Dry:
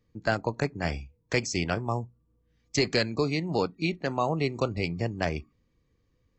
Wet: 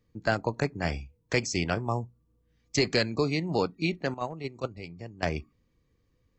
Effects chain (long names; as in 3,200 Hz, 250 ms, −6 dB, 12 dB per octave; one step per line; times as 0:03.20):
0:04.14–0:05.23: noise gate −23 dBFS, range −12 dB